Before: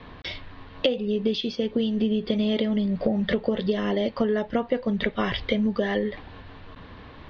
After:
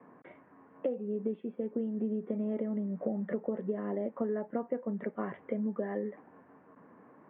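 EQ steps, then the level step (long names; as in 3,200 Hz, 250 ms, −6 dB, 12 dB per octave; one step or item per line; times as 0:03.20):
high-pass filter 180 Hz 24 dB per octave
Bessel low-pass filter 1,100 Hz, order 8
−8.5 dB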